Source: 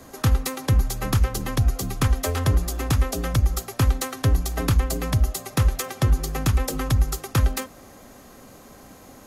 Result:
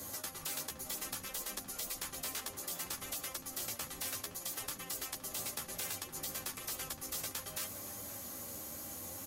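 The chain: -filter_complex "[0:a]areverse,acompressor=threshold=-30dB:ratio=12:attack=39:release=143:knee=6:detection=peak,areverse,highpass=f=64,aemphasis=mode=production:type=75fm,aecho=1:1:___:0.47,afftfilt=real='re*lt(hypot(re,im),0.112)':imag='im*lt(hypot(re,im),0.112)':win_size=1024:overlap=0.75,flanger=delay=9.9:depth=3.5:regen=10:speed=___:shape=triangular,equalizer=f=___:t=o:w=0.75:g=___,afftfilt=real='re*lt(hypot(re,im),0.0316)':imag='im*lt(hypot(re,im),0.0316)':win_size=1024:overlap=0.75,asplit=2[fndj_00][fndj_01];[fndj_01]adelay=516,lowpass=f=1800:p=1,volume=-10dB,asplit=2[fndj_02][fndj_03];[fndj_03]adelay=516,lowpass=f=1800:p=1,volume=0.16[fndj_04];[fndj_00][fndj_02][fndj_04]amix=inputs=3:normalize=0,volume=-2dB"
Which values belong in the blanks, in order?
3.5, 0.63, 110, 9.5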